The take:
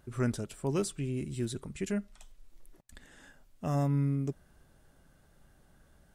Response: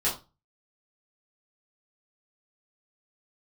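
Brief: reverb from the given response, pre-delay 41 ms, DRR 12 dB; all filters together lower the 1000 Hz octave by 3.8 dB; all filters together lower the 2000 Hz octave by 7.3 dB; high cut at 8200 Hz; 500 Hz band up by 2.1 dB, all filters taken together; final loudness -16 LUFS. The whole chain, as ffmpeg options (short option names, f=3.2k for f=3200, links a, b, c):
-filter_complex "[0:a]lowpass=8.2k,equalizer=f=500:t=o:g=4.5,equalizer=f=1k:t=o:g=-6.5,equalizer=f=2k:t=o:g=-8,asplit=2[a][b];[1:a]atrim=start_sample=2205,adelay=41[c];[b][c]afir=irnorm=-1:irlink=0,volume=-21.5dB[d];[a][d]amix=inputs=2:normalize=0,volume=17dB"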